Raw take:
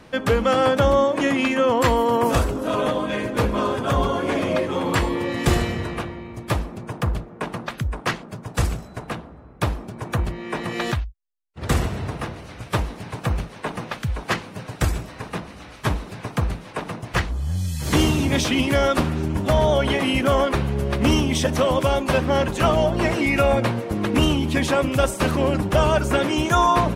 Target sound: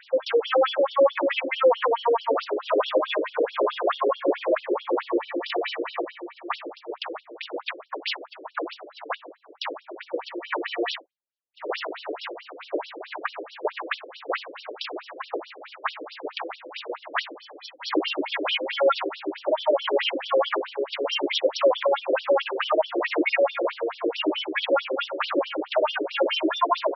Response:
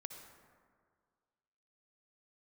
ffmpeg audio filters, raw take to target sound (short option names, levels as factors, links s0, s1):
-filter_complex "[0:a]asettb=1/sr,asplit=3[s0][s1][s2];[s0]atrim=end=4.114[s3];[s1]atrim=start=4.11:end=5.5,asetpts=PTS-STARTPTS,afade=t=in:d=0.004:c=qsin,afade=t=out:st=1.386:d=0.004:c=qsin,highshelf=f=2100:g=-11.5[s4];[s2]atrim=start=5.496[s5];[s3][s4]acrossfade=d=0.004:c1=hsin:c2=qsin[s6];[s6][s5]acrossfade=d=0.004:c1=qsin:c2=hsin,alimiter=limit=0.188:level=0:latency=1:release=13,afftfilt=real='re*between(b*sr/1024,400*pow(4100/400,0.5+0.5*sin(2*PI*4.6*pts/sr))/1.41,400*pow(4100/400,0.5+0.5*sin(2*PI*4.6*pts/sr))*1.41)':imag='im*between(b*sr/1024,400*pow(4100/400,0.5+0.5*sin(2*PI*4.6*pts/sr))/1.41,400*pow(4100/400,0.5+0.5*sin(2*PI*4.6*pts/sr))*1.41)':win_size=1024:overlap=0.75,volume=2.24"